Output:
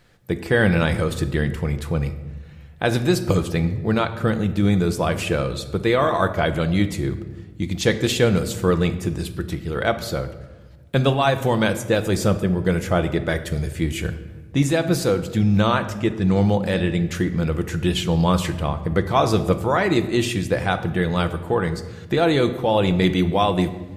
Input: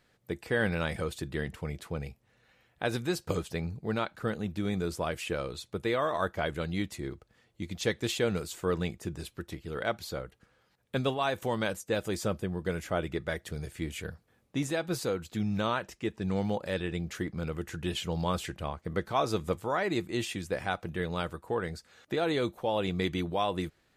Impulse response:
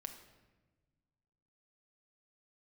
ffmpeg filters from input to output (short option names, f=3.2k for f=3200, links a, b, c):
-filter_complex "[0:a]asplit=2[a][b];[1:a]atrim=start_sample=2205,lowshelf=f=150:g=10.5[c];[b][c]afir=irnorm=-1:irlink=0,volume=9dB[d];[a][d]amix=inputs=2:normalize=0,volume=1dB"